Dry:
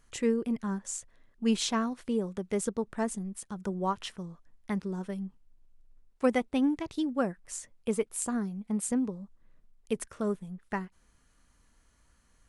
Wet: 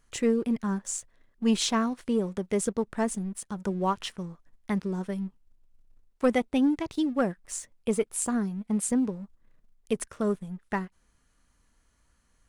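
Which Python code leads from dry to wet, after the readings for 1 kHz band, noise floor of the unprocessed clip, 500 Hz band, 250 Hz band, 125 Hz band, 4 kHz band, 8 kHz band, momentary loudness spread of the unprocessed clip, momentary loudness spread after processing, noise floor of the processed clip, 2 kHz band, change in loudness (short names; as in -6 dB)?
+3.0 dB, -67 dBFS, +3.0 dB, +3.5 dB, +3.5 dB, +3.5 dB, +3.5 dB, 11 LU, 10 LU, -69 dBFS, +3.0 dB, +3.5 dB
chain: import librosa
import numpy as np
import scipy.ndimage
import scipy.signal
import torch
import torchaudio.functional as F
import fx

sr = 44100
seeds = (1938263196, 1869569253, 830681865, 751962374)

y = fx.leveller(x, sr, passes=1)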